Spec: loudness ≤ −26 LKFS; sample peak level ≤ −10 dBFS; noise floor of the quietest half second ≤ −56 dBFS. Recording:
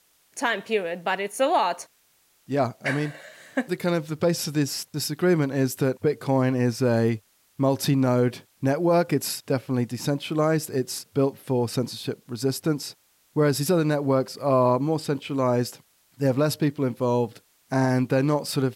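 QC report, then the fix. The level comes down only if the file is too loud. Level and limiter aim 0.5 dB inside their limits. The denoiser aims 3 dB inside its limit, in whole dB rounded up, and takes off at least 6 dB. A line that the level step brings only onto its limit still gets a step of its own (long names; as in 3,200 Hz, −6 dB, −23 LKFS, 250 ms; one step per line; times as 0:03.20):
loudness −25.0 LKFS: out of spec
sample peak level −10.5 dBFS: in spec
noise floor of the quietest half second −63 dBFS: in spec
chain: level −1.5 dB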